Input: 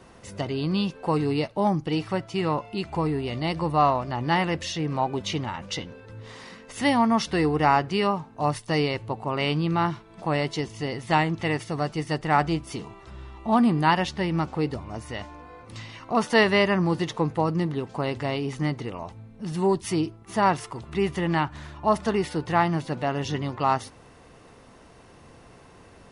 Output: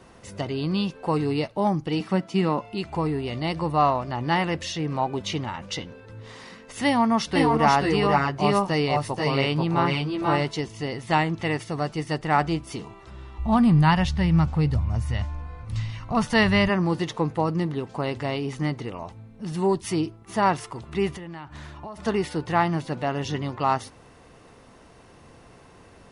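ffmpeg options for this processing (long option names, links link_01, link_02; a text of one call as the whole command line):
ffmpeg -i in.wav -filter_complex "[0:a]asettb=1/sr,asplit=3[link_01][link_02][link_03];[link_01]atrim=end=2.004[link_04];[link_02]atrim=start=2:end=2.6,asetpts=PTS-STARTPTS,afade=type=in:duration=0.004:curve=qsin,afade=type=out:start_time=0.596:duration=0.004:curve=qsin,lowshelf=frequency=130:width_type=q:width=3:gain=-13.5[link_05];[link_03]atrim=start=2.596[link_06];[link_04][link_05]acrossfade=duration=0.004:curve1=hsin:curve2=qsin[link_07];[link_07][link_06]acrossfade=duration=0.004:curve1=qsin:curve2=hsin,asettb=1/sr,asplit=3[link_08][link_09][link_10];[link_08]atrim=end=6.874[link_11];[link_09]atrim=start=6.87:end=10.61,asetpts=PTS-STARTPTS,afade=type=in:duration=0.004:curve=qsin,afade=type=out:start_time=3.736:duration=0.004:curve=qsin,aecho=1:1:483|498:0.596|0.668,atrim=end_sample=164934[link_12];[link_10]atrim=start=10.606[link_13];[link_11][link_12]acrossfade=duration=0.004:curve1=hsin:curve2=qsin[link_14];[link_14][link_13]acrossfade=duration=0.004:curve1=qsin:curve2=hsin,asplit=3[link_15][link_16][link_17];[link_15]afade=type=out:start_time=13.38:duration=0.02[link_18];[link_16]asubboost=boost=12:cutoff=99,afade=type=in:start_time=13.38:duration=0.02,afade=type=out:start_time=16.68:duration=0.02[link_19];[link_17]afade=type=in:start_time=16.68:duration=0.02[link_20];[link_18][link_19][link_20]amix=inputs=3:normalize=0,asplit=3[link_21][link_22][link_23];[link_21]afade=type=out:start_time=21.15:duration=0.02[link_24];[link_22]acompressor=threshold=-34dB:ratio=10:attack=3.2:release=140:knee=1:detection=peak,afade=type=in:start_time=21.15:duration=0.02,afade=type=out:start_time=21.97:duration=0.02[link_25];[link_23]afade=type=in:start_time=21.97:duration=0.02[link_26];[link_24][link_25][link_26]amix=inputs=3:normalize=0" out.wav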